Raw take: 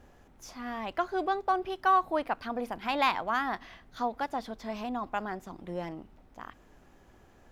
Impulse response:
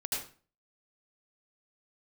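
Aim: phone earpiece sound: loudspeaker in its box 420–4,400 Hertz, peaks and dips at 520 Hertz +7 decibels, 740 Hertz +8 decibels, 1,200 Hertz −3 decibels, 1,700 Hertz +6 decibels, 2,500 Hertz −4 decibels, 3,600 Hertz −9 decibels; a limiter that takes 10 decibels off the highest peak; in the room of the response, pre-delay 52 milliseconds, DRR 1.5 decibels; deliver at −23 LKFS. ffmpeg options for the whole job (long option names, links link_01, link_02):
-filter_complex "[0:a]alimiter=level_in=0.5dB:limit=-24dB:level=0:latency=1,volume=-0.5dB,asplit=2[link_01][link_02];[1:a]atrim=start_sample=2205,adelay=52[link_03];[link_02][link_03]afir=irnorm=-1:irlink=0,volume=-5dB[link_04];[link_01][link_04]amix=inputs=2:normalize=0,highpass=420,equalizer=frequency=520:width_type=q:width=4:gain=7,equalizer=frequency=740:width_type=q:width=4:gain=8,equalizer=frequency=1200:width_type=q:width=4:gain=-3,equalizer=frequency=1700:width_type=q:width=4:gain=6,equalizer=frequency=2500:width_type=q:width=4:gain=-4,equalizer=frequency=3600:width_type=q:width=4:gain=-9,lowpass=frequency=4400:width=0.5412,lowpass=frequency=4400:width=1.3066,volume=7.5dB"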